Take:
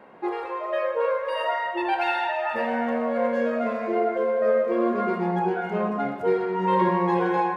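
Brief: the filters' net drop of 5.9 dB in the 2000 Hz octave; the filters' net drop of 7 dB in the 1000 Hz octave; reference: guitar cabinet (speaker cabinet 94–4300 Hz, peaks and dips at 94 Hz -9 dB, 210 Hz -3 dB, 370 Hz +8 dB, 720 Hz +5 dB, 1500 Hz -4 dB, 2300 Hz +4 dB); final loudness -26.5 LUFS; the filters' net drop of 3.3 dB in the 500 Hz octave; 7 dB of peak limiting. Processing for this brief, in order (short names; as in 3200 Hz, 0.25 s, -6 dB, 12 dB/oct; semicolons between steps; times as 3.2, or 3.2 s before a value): bell 500 Hz -8 dB; bell 1000 Hz -8 dB; bell 2000 Hz -4.5 dB; limiter -23 dBFS; speaker cabinet 94–4300 Hz, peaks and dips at 94 Hz -9 dB, 210 Hz -3 dB, 370 Hz +8 dB, 720 Hz +5 dB, 1500 Hz -4 dB, 2300 Hz +4 dB; gain +3 dB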